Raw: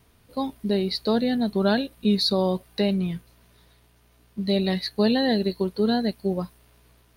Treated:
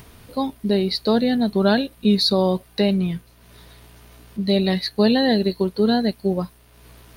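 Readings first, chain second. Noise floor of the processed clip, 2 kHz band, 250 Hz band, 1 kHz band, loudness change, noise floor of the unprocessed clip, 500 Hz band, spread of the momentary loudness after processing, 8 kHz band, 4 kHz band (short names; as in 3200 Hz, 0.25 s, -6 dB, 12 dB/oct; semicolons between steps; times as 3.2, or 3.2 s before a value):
-52 dBFS, +4.0 dB, +4.0 dB, +4.0 dB, +4.0 dB, -60 dBFS, +4.0 dB, 10 LU, n/a, +4.0 dB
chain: upward compressor, threshold -40 dBFS; gain +4 dB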